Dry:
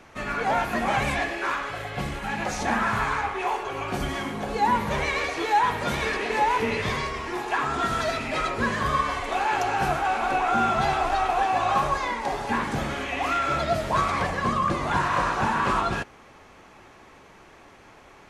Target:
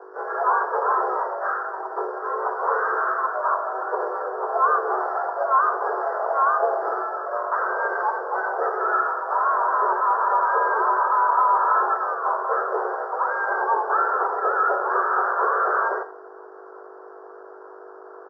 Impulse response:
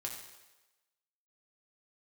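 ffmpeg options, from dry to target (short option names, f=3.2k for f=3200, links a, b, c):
-filter_complex "[0:a]aemphasis=mode=reproduction:type=50kf,asplit=4[a][b][c][d];[b]asetrate=33038,aresample=44100,atempo=1.33484,volume=-17dB[e];[c]asetrate=37084,aresample=44100,atempo=1.18921,volume=-16dB[f];[d]asetrate=58866,aresample=44100,atempo=0.749154,volume=-5dB[g];[a][e][f][g]amix=inputs=4:normalize=0,aresample=11025,asoftclip=type=hard:threshold=-18.5dB,aresample=44100,aeval=exprs='val(0)+0.0178*(sin(2*PI*50*n/s)+sin(2*PI*2*50*n/s)/2+sin(2*PI*3*50*n/s)/3+sin(2*PI*4*50*n/s)/4+sin(2*PI*5*50*n/s)/5)':c=same,acrusher=bits=2:mode=log:mix=0:aa=0.000001,asuperstop=centerf=2600:order=12:qfactor=0.69,asplit=2[h][i];[1:a]atrim=start_sample=2205,afade=t=out:st=0.32:d=0.01,atrim=end_sample=14553,asetrate=57330,aresample=44100[j];[i][j]afir=irnorm=-1:irlink=0,volume=-0.5dB[k];[h][k]amix=inputs=2:normalize=0,highpass=f=180:t=q:w=0.5412,highpass=f=180:t=q:w=1.307,lowpass=f=3.1k:t=q:w=0.5176,lowpass=f=3.1k:t=q:w=0.7071,lowpass=f=3.1k:t=q:w=1.932,afreqshift=230"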